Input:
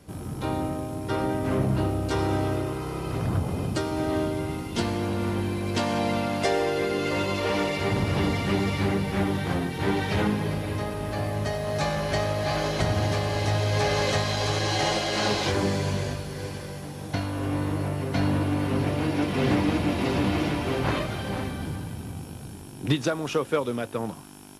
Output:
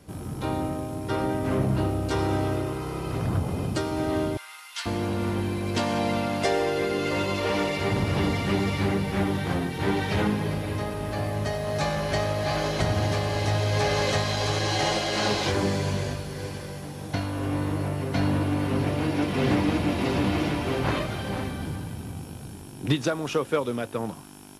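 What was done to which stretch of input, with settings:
4.37–4.86 HPF 1200 Hz 24 dB/oct

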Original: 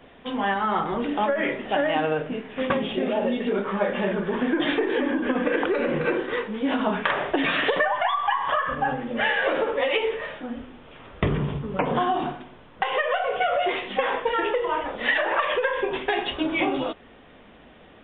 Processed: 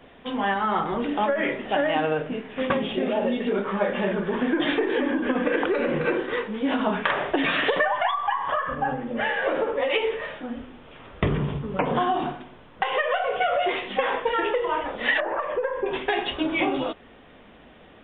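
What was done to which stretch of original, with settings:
8.11–9.9 high shelf 2200 Hz -8.5 dB
15.2–15.86 Bessel low-pass 870 Hz

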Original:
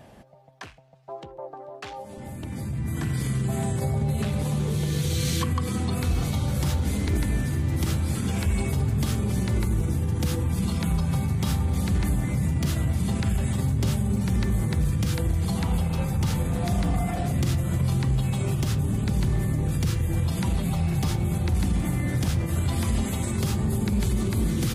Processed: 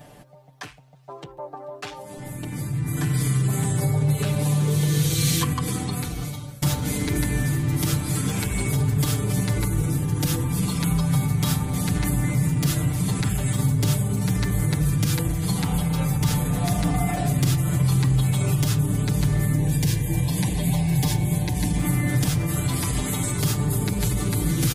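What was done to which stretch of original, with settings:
5.66–6.62 fade out, to -23 dB
19.58–21.78 Butterworth band-stop 1300 Hz, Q 3
whole clip: high shelf 7000 Hz +8.5 dB; comb 6.8 ms, depth 96%

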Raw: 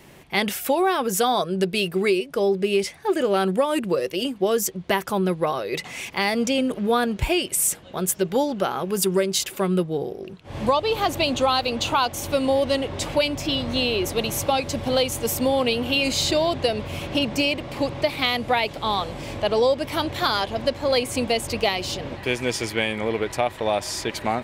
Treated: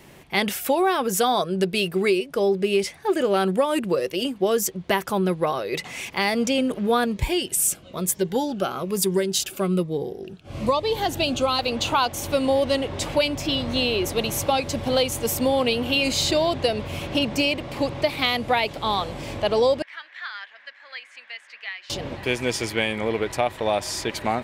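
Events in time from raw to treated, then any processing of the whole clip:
7.05–11.59 cascading phaser falling 1.1 Hz
19.82–21.9 ladder band-pass 1900 Hz, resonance 70%

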